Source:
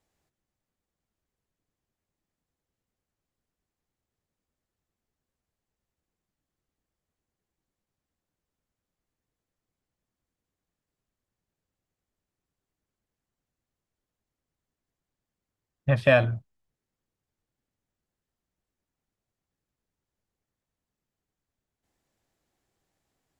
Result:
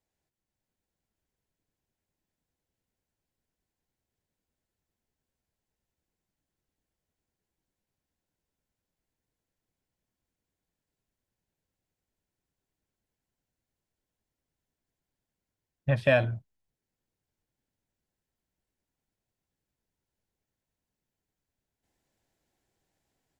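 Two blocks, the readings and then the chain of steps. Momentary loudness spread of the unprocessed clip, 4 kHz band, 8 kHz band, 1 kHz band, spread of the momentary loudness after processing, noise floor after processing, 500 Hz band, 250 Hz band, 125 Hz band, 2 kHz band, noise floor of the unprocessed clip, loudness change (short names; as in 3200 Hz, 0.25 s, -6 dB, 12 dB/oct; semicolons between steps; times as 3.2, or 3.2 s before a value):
14 LU, -3.5 dB, n/a, -4.0 dB, 14 LU, under -85 dBFS, -3.5 dB, -3.5 dB, -3.0 dB, -3.5 dB, under -85 dBFS, -3.5 dB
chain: notch 1200 Hz, Q 7; AGC gain up to 7.5 dB; gain -8 dB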